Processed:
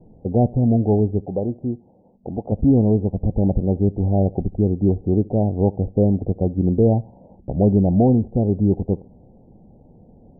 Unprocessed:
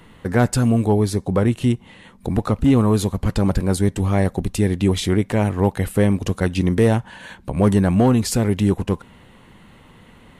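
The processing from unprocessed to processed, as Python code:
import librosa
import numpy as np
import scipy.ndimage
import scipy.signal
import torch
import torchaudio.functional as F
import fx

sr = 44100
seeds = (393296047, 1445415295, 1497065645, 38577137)

p1 = scipy.signal.sosfilt(scipy.signal.butter(12, 790.0, 'lowpass', fs=sr, output='sos'), x)
p2 = fx.tilt_eq(p1, sr, slope=3.0, at=(1.22, 2.52))
y = p2 + fx.echo_feedback(p2, sr, ms=71, feedback_pct=33, wet_db=-23.5, dry=0)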